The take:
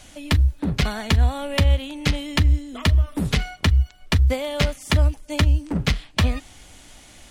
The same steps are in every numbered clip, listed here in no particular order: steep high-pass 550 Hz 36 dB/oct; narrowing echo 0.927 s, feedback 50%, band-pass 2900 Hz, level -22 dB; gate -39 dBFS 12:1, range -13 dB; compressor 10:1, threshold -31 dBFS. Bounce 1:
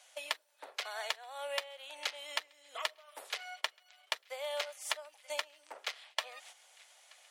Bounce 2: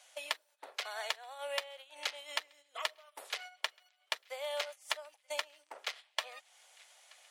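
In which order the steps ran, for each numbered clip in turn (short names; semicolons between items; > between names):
narrowing echo > gate > compressor > steep high-pass; narrowing echo > compressor > gate > steep high-pass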